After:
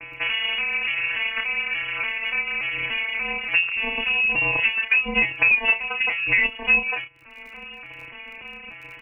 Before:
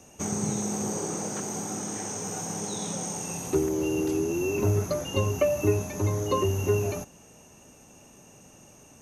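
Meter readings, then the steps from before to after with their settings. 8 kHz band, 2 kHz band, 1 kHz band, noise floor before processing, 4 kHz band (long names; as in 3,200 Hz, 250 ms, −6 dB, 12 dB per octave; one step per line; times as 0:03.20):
below −35 dB, +23.5 dB, +2.0 dB, −53 dBFS, +14.5 dB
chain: vocoder with an arpeggio as carrier major triad, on F3, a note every 290 ms
high-pass filter 890 Hz 12 dB per octave
reverb reduction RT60 0.76 s
voice inversion scrambler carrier 3,100 Hz
surface crackle 22 per second −68 dBFS
double-tracking delay 31 ms −8 dB
boost into a limiter +27 dB
multiband upward and downward compressor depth 40%
level −6.5 dB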